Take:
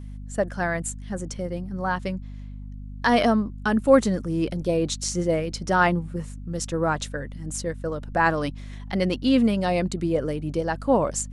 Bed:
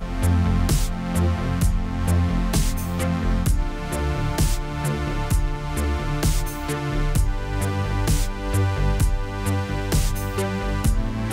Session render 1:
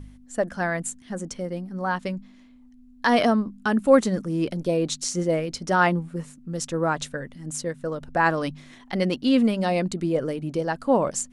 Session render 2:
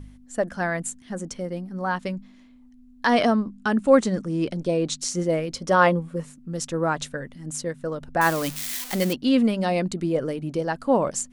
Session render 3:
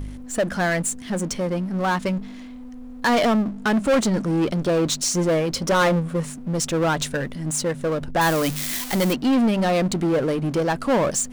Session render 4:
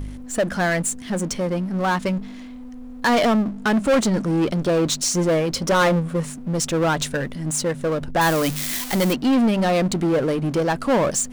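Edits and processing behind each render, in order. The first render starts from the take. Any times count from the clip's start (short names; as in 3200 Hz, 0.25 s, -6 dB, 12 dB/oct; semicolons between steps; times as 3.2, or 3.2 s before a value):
de-hum 50 Hz, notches 4
3.06–5 steep low-pass 9500 Hz; 5.54–6.2 small resonant body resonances 530/1100/3300 Hz, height 10 dB; 8.21–9.13 switching spikes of -19.5 dBFS
power-law curve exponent 0.7; soft clip -14 dBFS, distortion -14 dB
gain +1 dB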